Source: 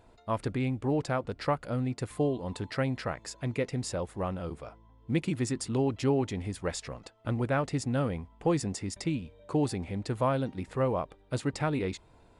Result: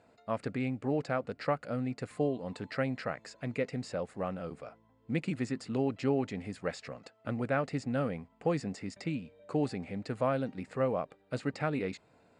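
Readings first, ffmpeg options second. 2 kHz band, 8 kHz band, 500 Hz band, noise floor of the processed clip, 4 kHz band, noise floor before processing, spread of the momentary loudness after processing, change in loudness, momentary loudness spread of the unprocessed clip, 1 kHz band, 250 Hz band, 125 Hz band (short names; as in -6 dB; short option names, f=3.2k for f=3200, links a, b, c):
-1.0 dB, -12.0 dB, -2.0 dB, -67 dBFS, -6.0 dB, -59 dBFS, 8 LU, -3.0 dB, 7 LU, -3.0 dB, -2.5 dB, -5.5 dB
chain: -filter_complex "[0:a]highpass=170,equalizer=f=350:t=q:w=4:g=-7,equalizer=f=960:t=q:w=4:g=-8,equalizer=f=3.4k:t=q:w=4:g=-8,equalizer=f=5.9k:t=q:w=4:g=-7,lowpass=f=8k:w=0.5412,lowpass=f=8k:w=1.3066,acrossover=split=4800[a][b];[b]acompressor=threshold=-53dB:ratio=4:attack=1:release=60[c];[a][c]amix=inputs=2:normalize=0"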